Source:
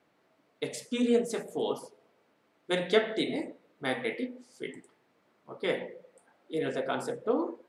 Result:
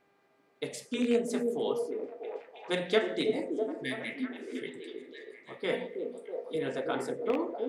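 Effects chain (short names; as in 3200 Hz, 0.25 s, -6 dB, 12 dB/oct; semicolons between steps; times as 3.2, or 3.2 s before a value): rattling part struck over -32 dBFS, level -24 dBFS; 3.66–4.58 spectral repair 310–1600 Hz both; 5.72–6.56 comb 4.4 ms, depth 88%; buzz 400 Hz, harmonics 6, -70 dBFS -4 dB/oct; on a send: delay with a stepping band-pass 0.324 s, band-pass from 340 Hz, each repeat 0.7 oct, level -2 dB; on the sum: gain -2 dB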